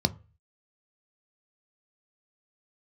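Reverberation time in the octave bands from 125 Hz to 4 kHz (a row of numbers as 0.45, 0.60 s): 0.50, 0.30, 0.35, 0.35, 0.35, 0.25 s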